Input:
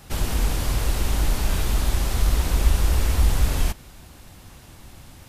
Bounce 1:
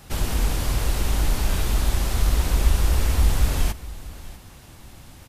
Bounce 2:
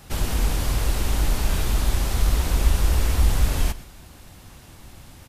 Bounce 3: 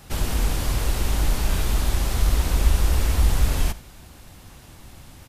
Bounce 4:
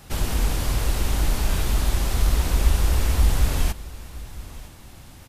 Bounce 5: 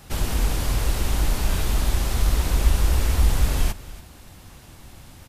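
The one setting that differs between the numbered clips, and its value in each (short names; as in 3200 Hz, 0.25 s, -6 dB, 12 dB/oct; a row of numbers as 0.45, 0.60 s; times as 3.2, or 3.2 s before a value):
echo, time: 646, 124, 75, 959, 286 ms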